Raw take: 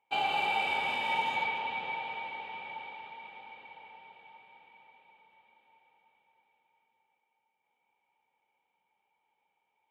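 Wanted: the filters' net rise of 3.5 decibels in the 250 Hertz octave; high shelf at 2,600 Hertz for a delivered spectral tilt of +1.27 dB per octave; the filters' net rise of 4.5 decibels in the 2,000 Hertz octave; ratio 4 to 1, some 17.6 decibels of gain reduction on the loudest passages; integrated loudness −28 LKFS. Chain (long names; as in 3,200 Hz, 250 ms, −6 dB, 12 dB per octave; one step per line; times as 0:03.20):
parametric band 250 Hz +4.5 dB
parametric band 2,000 Hz +8 dB
high-shelf EQ 2,600 Hz −5 dB
downward compressor 4 to 1, threshold −47 dBFS
level +19 dB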